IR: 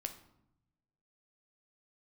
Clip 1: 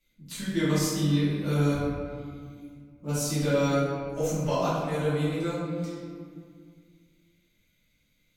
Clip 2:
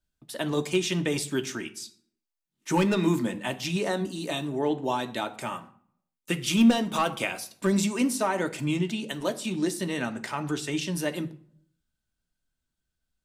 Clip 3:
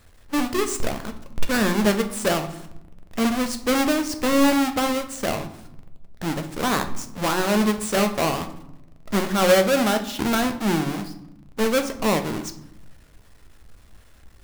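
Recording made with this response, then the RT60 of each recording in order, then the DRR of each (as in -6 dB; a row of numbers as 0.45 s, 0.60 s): 3; 2.1 s, 0.55 s, 0.80 s; -13.5 dB, 6.5 dB, 6.0 dB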